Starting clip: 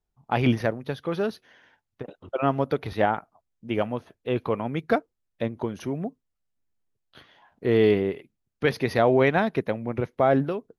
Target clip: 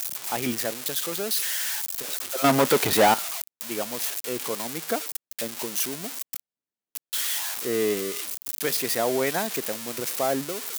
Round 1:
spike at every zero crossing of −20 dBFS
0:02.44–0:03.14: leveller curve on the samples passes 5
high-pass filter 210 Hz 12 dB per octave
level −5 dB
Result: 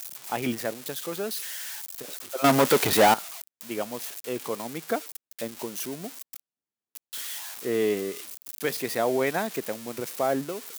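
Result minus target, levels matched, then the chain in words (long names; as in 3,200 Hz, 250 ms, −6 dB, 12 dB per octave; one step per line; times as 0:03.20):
spike at every zero crossing: distortion −8 dB
spike at every zero crossing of −12 dBFS
0:02.44–0:03.14: leveller curve on the samples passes 5
high-pass filter 210 Hz 12 dB per octave
level −5 dB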